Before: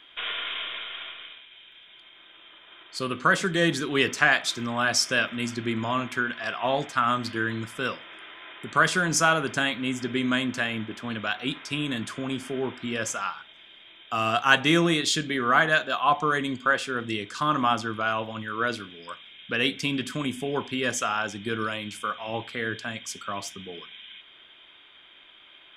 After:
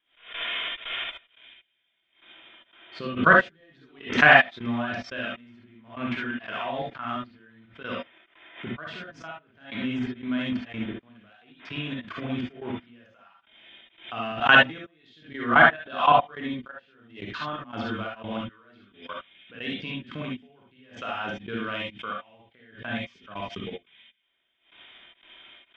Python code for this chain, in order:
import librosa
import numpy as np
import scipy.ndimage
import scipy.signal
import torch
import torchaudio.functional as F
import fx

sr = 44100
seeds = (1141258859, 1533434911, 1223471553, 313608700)

y = scipy.signal.sosfilt(scipy.signal.butter(4, 3400.0, 'lowpass', fs=sr, output='sos'), x)
y = fx.peak_eq(y, sr, hz=1200.0, db=-4.0, octaves=0.21)
y = fx.level_steps(y, sr, step_db=20)
y = fx.transient(y, sr, attack_db=0, sustain_db=-7)
y = fx.step_gate(y, sr, bpm=88, pattern='..xx.xx.x..', floor_db=-24.0, edge_ms=4.5)
y = fx.rev_gated(y, sr, seeds[0], gate_ms=90, shape='rising', drr_db=-2.5)
y = fx.pre_swell(y, sr, db_per_s=140.0)
y = F.gain(torch.from_numpy(y), 5.0).numpy()